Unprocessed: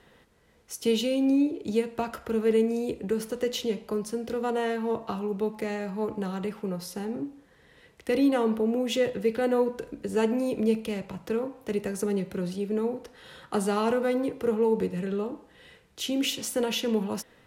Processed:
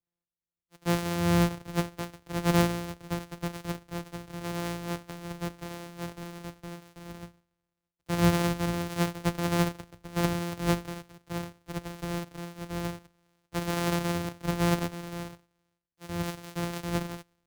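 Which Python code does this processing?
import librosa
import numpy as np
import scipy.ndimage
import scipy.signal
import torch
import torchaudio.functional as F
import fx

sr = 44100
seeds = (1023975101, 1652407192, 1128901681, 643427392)

y = np.r_[np.sort(x[:len(x) // 256 * 256].reshape(-1, 256), axis=1).ravel(), x[len(x) // 256 * 256:]]
y = fx.band_widen(y, sr, depth_pct=100)
y = y * librosa.db_to_amplitude(-4.5)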